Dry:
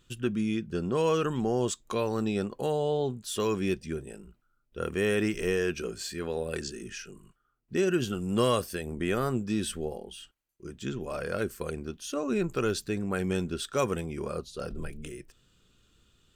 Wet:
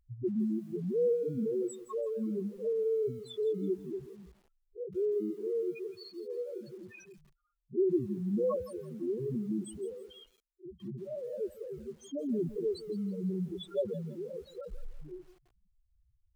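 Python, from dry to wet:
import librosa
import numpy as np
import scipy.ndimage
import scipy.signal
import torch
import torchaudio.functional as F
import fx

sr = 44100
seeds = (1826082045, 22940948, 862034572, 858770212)

y = fx.notch_comb(x, sr, f0_hz=1400.0, at=(1.47, 2.42))
y = fx.low_shelf(y, sr, hz=170.0, db=-9.5, at=(5.02, 6.39))
y = fx.spec_topn(y, sr, count=2)
y = fx.echo_crushed(y, sr, ms=166, feedback_pct=35, bits=9, wet_db=-14)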